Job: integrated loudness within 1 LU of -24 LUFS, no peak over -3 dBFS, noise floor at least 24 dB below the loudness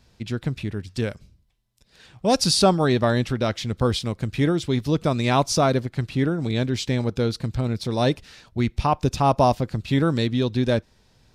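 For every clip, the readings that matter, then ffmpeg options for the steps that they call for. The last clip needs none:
loudness -23.0 LUFS; peak level -4.5 dBFS; loudness target -24.0 LUFS
-> -af "volume=0.891"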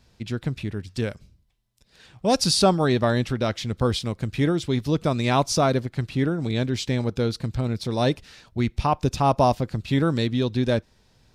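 loudness -24.0 LUFS; peak level -5.5 dBFS; noise floor -62 dBFS

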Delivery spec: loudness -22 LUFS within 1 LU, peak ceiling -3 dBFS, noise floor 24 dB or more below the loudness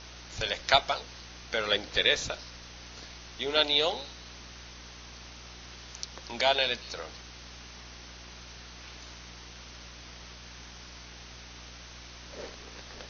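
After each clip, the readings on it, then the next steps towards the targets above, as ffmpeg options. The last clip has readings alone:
hum 60 Hz; highest harmonic 360 Hz; hum level -49 dBFS; noise floor -47 dBFS; noise floor target -52 dBFS; loudness -28.0 LUFS; peak level -7.0 dBFS; loudness target -22.0 LUFS
-> -af "bandreject=f=60:t=h:w=4,bandreject=f=120:t=h:w=4,bandreject=f=180:t=h:w=4,bandreject=f=240:t=h:w=4,bandreject=f=300:t=h:w=4,bandreject=f=360:t=h:w=4"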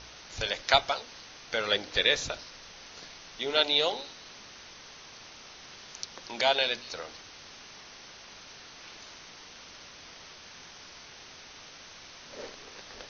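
hum not found; noise floor -49 dBFS; noise floor target -52 dBFS
-> -af "afftdn=nr=6:nf=-49"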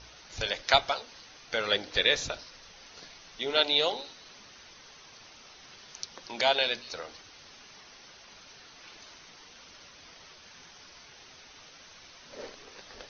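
noise floor -53 dBFS; loudness -28.0 LUFS; peak level -7.0 dBFS; loudness target -22.0 LUFS
-> -af "volume=2,alimiter=limit=0.708:level=0:latency=1"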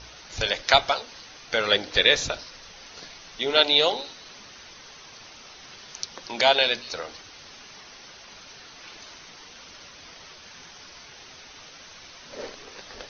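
loudness -22.5 LUFS; peak level -3.0 dBFS; noise floor -47 dBFS

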